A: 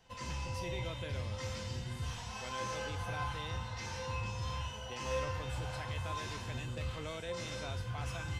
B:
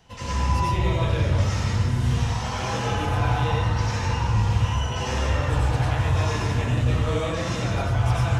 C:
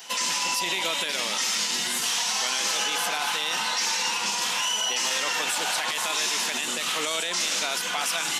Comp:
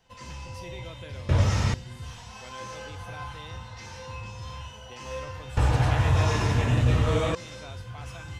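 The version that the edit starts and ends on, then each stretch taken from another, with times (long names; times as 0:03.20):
A
0:01.29–0:01.74: punch in from B
0:05.57–0:07.35: punch in from B
not used: C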